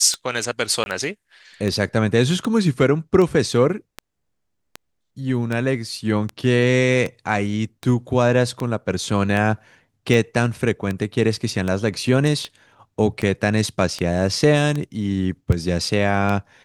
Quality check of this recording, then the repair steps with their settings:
tick 78 rpm -12 dBFS
0.84–0.86 gap 21 ms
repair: de-click; interpolate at 0.84, 21 ms

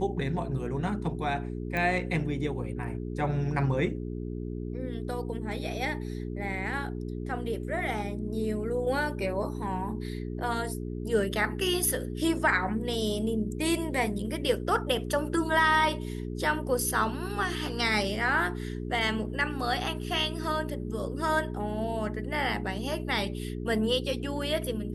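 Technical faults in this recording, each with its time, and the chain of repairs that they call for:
hum 60 Hz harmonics 7 -35 dBFS
1.77 pop -18 dBFS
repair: de-click; de-hum 60 Hz, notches 7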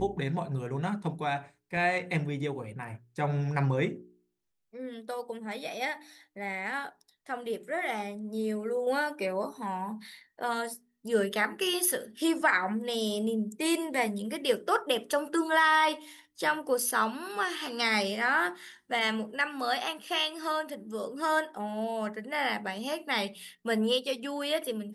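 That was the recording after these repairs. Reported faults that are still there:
none

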